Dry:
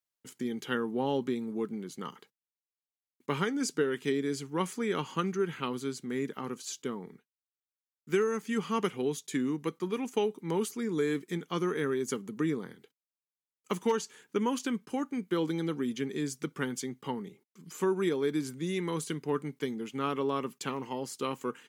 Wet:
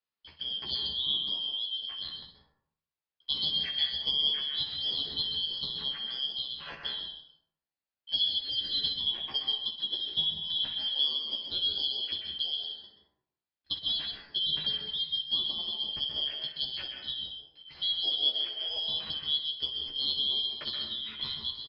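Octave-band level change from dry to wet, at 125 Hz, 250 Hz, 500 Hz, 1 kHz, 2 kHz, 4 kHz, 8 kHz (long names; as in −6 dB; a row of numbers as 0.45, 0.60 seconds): −14.0 dB, −22.5 dB, −22.5 dB, −16.0 dB, −8.5 dB, +19.5 dB, below −30 dB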